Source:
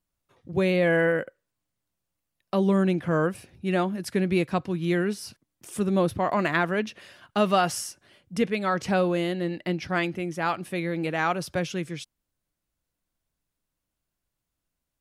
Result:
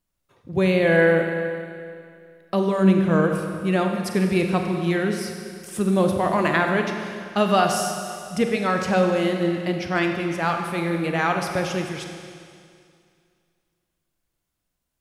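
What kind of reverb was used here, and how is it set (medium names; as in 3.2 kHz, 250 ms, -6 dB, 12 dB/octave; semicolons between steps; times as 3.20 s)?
Schroeder reverb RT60 2.3 s, combs from 32 ms, DRR 3.5 dB; trim +2.5 dB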